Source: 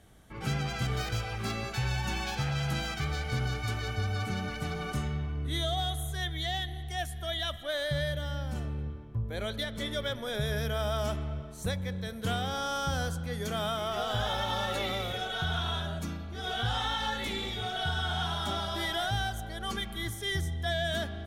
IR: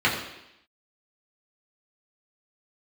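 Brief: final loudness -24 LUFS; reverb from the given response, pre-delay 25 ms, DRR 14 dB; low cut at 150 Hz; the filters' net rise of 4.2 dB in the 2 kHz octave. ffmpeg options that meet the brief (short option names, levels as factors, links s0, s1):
-filter_complex "[0:a]highpass=150,equalizer=f=2000:t=o:g=5.5,asplit=2[s0][s1];[1:a]atrim=start_sample=2205,adelay=25[s2];[s1][s2]afir=irnorm=-1:irlink=0,volume=0.0282[s3];[s0][s3]amix=inputs=2:normalize=0,volume=2.51"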